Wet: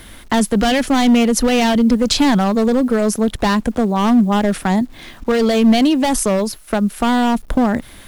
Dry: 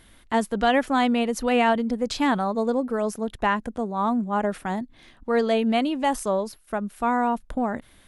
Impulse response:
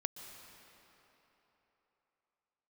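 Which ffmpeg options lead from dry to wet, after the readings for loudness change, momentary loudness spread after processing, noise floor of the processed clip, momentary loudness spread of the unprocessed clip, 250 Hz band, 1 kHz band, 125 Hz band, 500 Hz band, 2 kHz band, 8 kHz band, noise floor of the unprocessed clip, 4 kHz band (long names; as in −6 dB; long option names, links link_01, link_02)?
+8.5 dB, 7 LU, −39 dBFS, 9 LU, +11.5 dB, +4.0 dB, +13.5 dB, +6.5 dB, +5.5 dB, +15.0 dB, −54 dBFS, +11.5 dB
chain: -filter_complex "[0:a]apsyclip=16.5dB,volume=4.5dB,asoftclip=hard,volume=-4.5dB,acrossover=split=280|3000[link_01][link_02][link_03];[link_02]acompressor=threshold=-19dB:ratio=2.5[link_04];[link_01][link_04][link_03]amix=inputs=3:normalize=0,acrusher=bits=7:mix=0:aa=0.000001,volume=-1.5dB"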